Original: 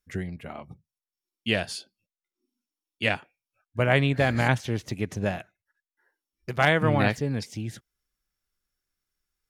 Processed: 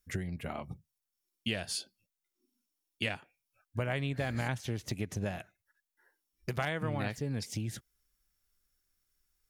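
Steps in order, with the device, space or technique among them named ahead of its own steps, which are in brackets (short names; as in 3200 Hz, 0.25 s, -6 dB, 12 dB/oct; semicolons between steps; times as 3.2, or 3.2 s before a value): ASMR close-microphone chain (low shelf 100 Hz +6 dB; compressor 5:1, threshold -32 dBFS, peak gain reduction 15 dB; high shelf 6200 Hz +8 dB)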